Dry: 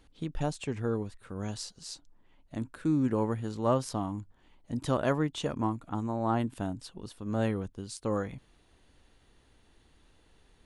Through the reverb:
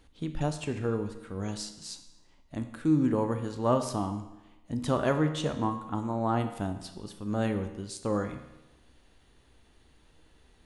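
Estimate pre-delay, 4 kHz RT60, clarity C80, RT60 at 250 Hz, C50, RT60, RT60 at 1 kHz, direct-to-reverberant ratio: 13 ms, 0.90 s, 11.5 dB, 0.95 s, 9.5 dB, 1.0 s, 0.95 s, 7.5 dB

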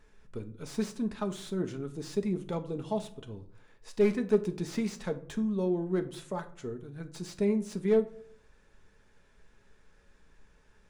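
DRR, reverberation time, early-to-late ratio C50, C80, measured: 6.0 dB, 0.60 s, 15.0 dB, 19.0 dB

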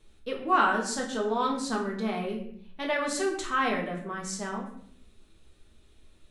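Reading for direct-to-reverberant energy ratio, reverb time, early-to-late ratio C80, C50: -1.5 dB, 0.65 s, 9.5 dB, 6.5 dB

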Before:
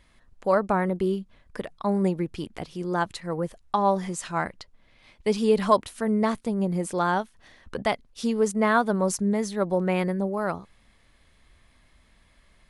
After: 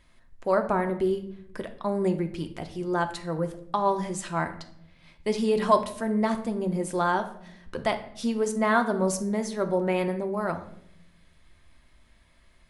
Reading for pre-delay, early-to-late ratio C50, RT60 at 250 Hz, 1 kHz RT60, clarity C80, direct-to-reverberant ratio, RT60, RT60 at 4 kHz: 3 ms, 12.0 dB, 1.2 s, 0.60 s, 15.5 dB, 6.0 dB, 0.75 s, 0.50 s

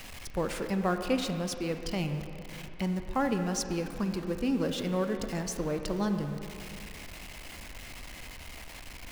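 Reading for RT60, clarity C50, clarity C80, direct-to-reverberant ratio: 2.7 s, 6.5 dB, 7.5 dB, 6.0 dB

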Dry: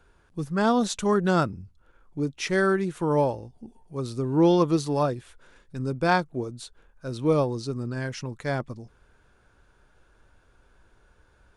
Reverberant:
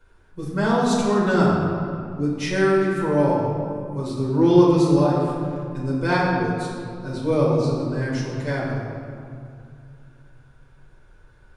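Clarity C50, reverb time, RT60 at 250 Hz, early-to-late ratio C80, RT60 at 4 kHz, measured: 0.0 dB, 2.3 s, 3.0 s, 1.5 dB, 1.4 s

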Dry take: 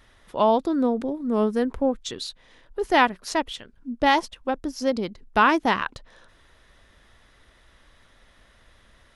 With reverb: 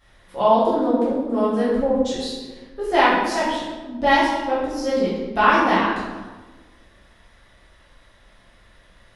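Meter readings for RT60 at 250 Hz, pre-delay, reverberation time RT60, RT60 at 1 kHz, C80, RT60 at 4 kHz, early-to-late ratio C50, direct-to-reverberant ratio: 1.5 s, 6 ms, 1.3 s, 1.2 s, 2.5 dB, 0.85 s, -0.5 dB, -10.5 dB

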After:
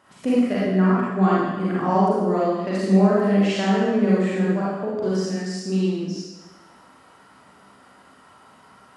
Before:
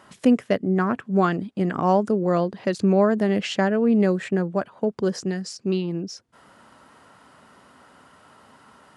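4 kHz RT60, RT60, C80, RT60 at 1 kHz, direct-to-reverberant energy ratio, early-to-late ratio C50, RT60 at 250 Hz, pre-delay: 1.1 s, 1.2 s, 0.0 dB, 1.2 s, -8.5 dB, -4.0 dB, 1.1 s, 35 ms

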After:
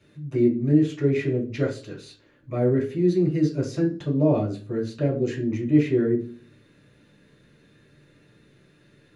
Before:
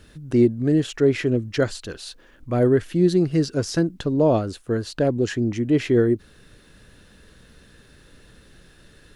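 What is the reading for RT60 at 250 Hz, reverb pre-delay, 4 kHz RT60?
0.55 s, 3 ms, 0.35 s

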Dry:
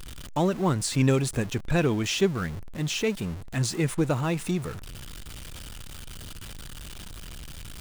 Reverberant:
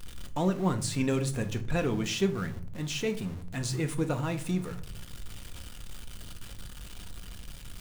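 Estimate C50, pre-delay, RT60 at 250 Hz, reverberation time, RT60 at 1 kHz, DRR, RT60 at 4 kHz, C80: 15.5 dB, 4 ms, 0.80 s, 0.50 s, 0.45 s, 6.5 dB, 0.30 s, 19.5 dB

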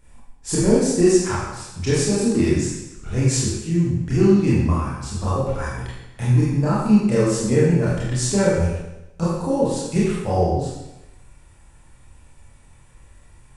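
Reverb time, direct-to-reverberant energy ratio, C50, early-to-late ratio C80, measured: 0.95 s, -8.5 dB, -1.5 dB, 2.0 dB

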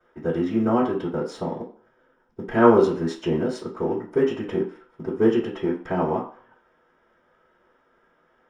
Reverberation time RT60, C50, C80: 0.45 s, 8.5 dB, 12.5 dB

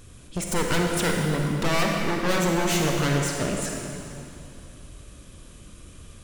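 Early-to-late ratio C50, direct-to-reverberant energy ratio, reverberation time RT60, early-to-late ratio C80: 0.5 dB, 0.0 dB, 2.8 s, 2.0 dB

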